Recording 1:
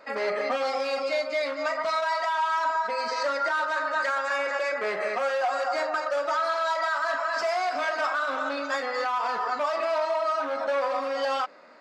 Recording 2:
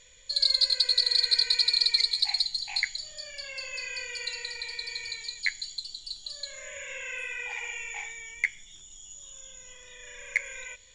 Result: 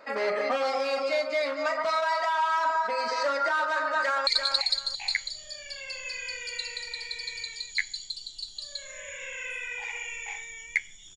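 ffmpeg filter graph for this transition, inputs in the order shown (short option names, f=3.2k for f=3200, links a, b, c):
-filter_complex "[0:a]apad=whole_dur=11.16,atrim=end=11.16,atrim=end=4.272[a];[1:a]atrim=start=1.948:end=8.84[b];[a][b]acrossfade=d=0.004:c1=hsin:c2=hsin,asplit=2[c][d];[d]afade=t=in:st=4.01:d=0.01,afade=t=out:st=4.27:d=0.01,aecho=0:1:340|680|1020:0.446684|0.0893367|0.0178673[e];[c][e]amix=inputs=2:normalize=0"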